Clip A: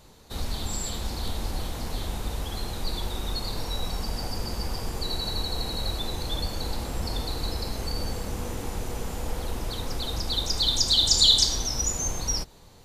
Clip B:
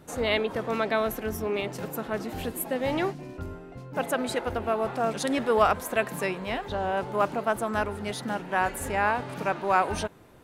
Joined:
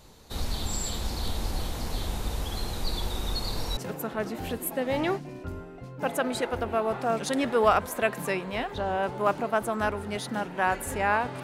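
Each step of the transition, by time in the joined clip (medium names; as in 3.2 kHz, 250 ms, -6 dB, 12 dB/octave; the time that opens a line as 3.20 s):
clip A
3.77 s: go over to clip B from 1.71 s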